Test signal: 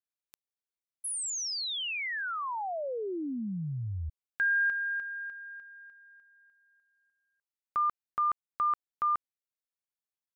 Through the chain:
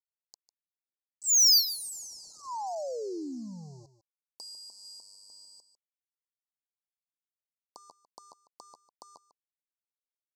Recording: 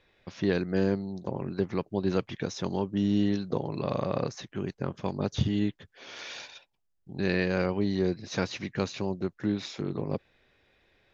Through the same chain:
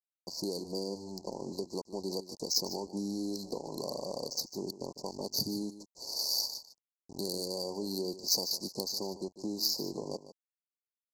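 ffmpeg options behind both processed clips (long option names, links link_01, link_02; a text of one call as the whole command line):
ffmpeg -i in.wav -af "highpass=270,equalizer=frequency=4600:width_type=o:width=0.28:gain=12.5,acompressor=threshold=-30dB:ratio=6:attack=7.9:release=324:knee=1:detection=rms,aresample=16000,aeval=exprs='val(0)*gte(abs(val(0)),0.00447)':channel_layout=same,aresample=44100,adynamicsmooth=sensitivity=7.5:basefreq=3700,asoftclip=type=tanh:threshold=-23.5dB,aexciter=amount=7.5:drive=4.2:freq=4600,asuperstop=centerf=2100:order=20:qfactor=0.65,aecho=1:1:150:0.2" out.wav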